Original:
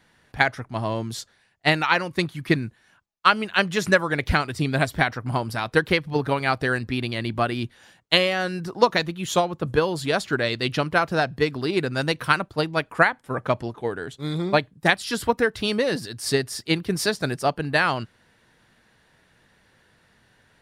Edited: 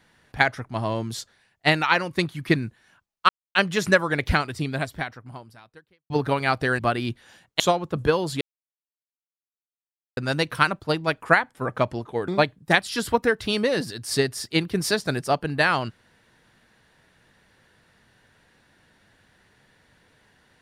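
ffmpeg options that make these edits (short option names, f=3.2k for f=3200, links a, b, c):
-filter_complex "[0:a]asplit=9[a][b][c][d][e][f][g][h][i];[a]atrim=end=3.29,asetpts=PTS-STARTPTS,afade=t=out:st=3.286:d=0.004:c=hsin[j];[b]atrim=start=3.29:end=3.55,asetpts=PTS-STARTPTS,volume=0[k];[c]atrim=start=3.55:end=6.1,asetpts=PTS-STARTPTS,afade=t=in:d=0.004:c=hsin,afade=t=out:st=0.76:d=1.79:c=qua[l];[d]atrim=start=6.1:end=6.792,asetpts=PTS-STARTPTS,afade=t=in:d=0.004:c=hsin[m];[e]atrim=start=7.328:end=8.142[n];[f]atrim=start=9.288:end=10.1,asetpts=PTS-STARTPTS,afade=t=out:st=0.808:d=0.004:c=hsin[o];[g]atrim=start=10.1:end=11.86,asetpts=PTS-STARTPTS,volume=0[p];[h]atrim=start=11.86:end=13.972,asetpts=PTS-STARTPTS,afade=t=in:d=0.004:c=hsin[q];[i]atrim=start=14.428[r];[j][k][l][m]concat=n=4:v=0:a=1[s];[s][n]acrossfade=d=0.004:c1=hsin:c2=hsin[t];[o][p][q]concat=n=3:v=0:a=1[u];[t][u]acrossfade=d=0.004:c1=hsin:c2=hsin[v];[v][r]acrossfade=d=0.004:c1=hsin:c2=hsin"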